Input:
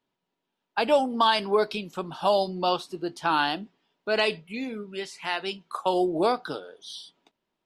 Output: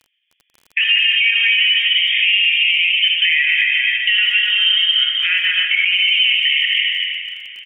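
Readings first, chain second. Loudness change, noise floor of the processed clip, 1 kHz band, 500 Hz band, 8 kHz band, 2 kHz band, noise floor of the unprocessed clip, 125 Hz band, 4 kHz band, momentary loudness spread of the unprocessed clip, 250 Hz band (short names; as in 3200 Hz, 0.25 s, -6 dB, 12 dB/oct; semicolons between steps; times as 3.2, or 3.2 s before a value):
+13.5 dB, -69 dBFS, under -15 dB, under -40 dB, under -10 dB, +20.0 dB, -83 dBFS, under -30 dB, +21.5 dB, 14 LU, under -40 dB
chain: regenerating reverse delay 0.126 s, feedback 44%, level -3 dB; gate -43 dBFS, range -14 dB; inverted band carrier 3400 Hz; compressor 12:1, threshold -31 dBFS, peak gain reduction 16.5 dB; treble ducked by the level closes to 2400 Hz, closed at -36 dBFS; elliptic high-pass 1900 Hz, stop band 70 dB; feedback echo 0.684 s, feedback 53%, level -20.5 dB; non-linear reverb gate 0.42 s flat, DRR 1.5 dB; crackle 26/s -57 dBFS; maximiser +30 dB; gain -5 dB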